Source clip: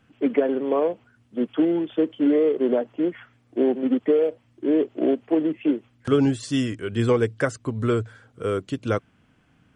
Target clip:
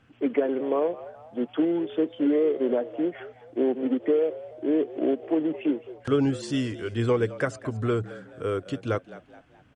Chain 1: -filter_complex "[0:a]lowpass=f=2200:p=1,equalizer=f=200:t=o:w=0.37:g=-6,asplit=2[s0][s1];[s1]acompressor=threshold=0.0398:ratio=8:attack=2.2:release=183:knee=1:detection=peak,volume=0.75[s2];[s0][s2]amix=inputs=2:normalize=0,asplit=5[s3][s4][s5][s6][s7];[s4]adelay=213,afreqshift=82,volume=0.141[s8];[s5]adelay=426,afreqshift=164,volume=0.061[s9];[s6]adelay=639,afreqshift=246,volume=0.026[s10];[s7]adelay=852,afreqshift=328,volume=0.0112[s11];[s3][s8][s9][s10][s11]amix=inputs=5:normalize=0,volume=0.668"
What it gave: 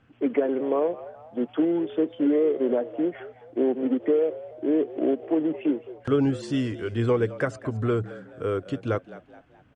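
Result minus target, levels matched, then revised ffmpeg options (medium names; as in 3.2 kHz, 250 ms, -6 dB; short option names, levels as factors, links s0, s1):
compression: peak gain reduction -8.5 dB; 4 kHz band -3.5 dB
-filter_complex "[0:a]lowpass=f=5500:p=1,equalizer=f=200:t=o:w=0.37:g=-6,asplit=2[s0][s1];[s1]acompressor=threshold=0.0133:ratio=8:attack=2.2:release=183:knee=1:detection=peak,volume=0.75[s2];[s0][s2]amix=inputs=2:normalize=0,asplit=5[s3][s4][s5][s6][s7];[s4]adelay=213,afreqshift=82,volume=0.141[s8];[s5]adelay=426,afreqshift=164,volume=0.061[s9];[s6]adelay=639,afreqshift=246,volume=0.026[s10];[s7]adelay=852,afreqshift=328,volume=0.0112[s11];[s3][s8][s9][s10][s11]amix=inputs=5:normalize=0,volume=0.668"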